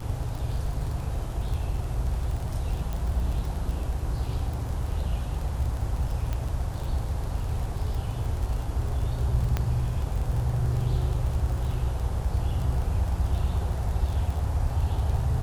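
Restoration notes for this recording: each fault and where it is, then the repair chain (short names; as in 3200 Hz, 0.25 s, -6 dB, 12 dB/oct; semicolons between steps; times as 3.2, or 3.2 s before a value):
crackle 27/s -31 dBFS
2.93 pop
6.33 pop -18 dBFS
9.57 pop -13 dBFS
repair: de-click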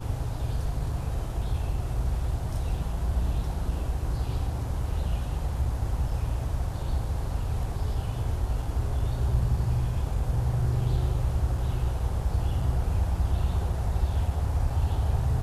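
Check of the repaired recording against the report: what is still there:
6.33 pop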